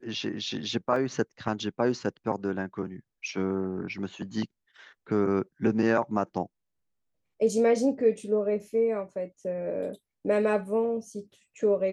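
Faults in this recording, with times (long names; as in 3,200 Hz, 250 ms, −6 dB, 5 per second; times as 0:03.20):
0:00.96: drop-out 2.2 ms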